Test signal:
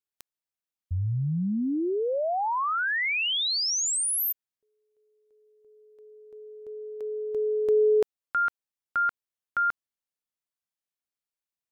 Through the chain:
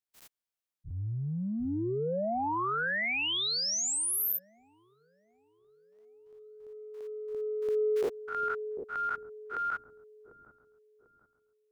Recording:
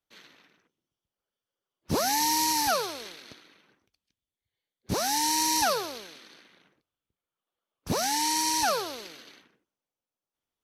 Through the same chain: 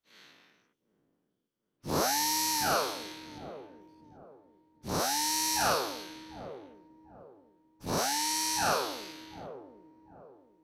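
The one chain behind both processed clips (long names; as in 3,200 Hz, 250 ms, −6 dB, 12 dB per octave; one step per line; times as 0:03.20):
every bin's largest magnitude spread in time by 120 ms
transient designer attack −8 dB, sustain +2 dB
delay with a low-pass on its return 746 ms, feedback 35%, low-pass 420 Hz, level −5.5 dB
level −7.5 dB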